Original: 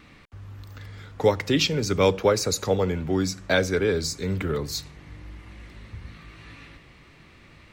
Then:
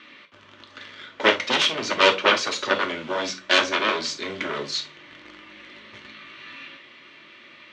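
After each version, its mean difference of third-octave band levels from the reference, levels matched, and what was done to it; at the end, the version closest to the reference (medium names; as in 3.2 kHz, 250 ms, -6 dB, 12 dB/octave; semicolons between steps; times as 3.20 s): 7.5 dB: Chebyshev shaper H 7 -8 dB, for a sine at -7 dBFS; in parallel at -11 dB: bit crusher 5-bit; on the sum: cabinet simulation 420–5400 Hz, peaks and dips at 450 Hz -4 dB, 790 Hz -10 dB, 3.2 kHz +6 dB, 4.9 kHz -4 dB; gated-style reverb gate 90 ms falling, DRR 4 dB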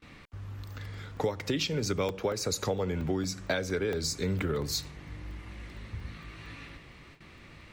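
5.0 dB: gate with hold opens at -42 dBFS; compression 12:1, threshold -26 dBFS, peak gain reduction 13 dB; crackling interface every 0.23 s, samples 64, zero, from 0.94 s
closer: second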